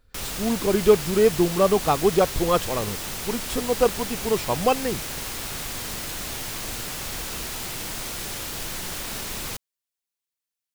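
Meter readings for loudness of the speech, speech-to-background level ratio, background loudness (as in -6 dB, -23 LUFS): -23.0 LUFS, 7.0 dB, -30.0 LUFS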